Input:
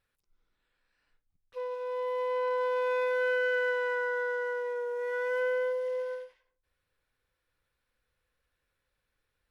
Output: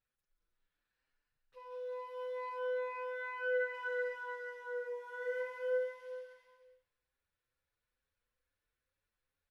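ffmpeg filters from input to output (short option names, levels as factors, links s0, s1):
-filter_complex "[0:a]asettb=1/sr,asplit=3[s0][s1][s2];[s0]atrim=end=2.584[s3];[s1]atrim=start=2.58:end=3.74,asetpts=PTS-STARTPTS,afade=t=in:d=0.004:c=qsin,afade=t=out:st=1.156:d=0.004:c=qsin,highshelf=f=2900:t=q:w=1.5:g=-6.5[s4];[s2]atrim=start=3.736[s5];[s3][s4]acrossfade=d=0.004:c1=hsin:c2=qsin[s6];[s6][s5]acrossfade=d=0.004:c1=qsin:c2=hsin,aecho=1:1:180|315|416.2|492.2|549.1:0.631|0.398|0.251|0.158|0.1,asplit=2[s7][s8];[s8]adelay=6.3,afreqshift=2.3[s9];[s7][s9]amix=inputs=2:normalize=1,volume=0.398"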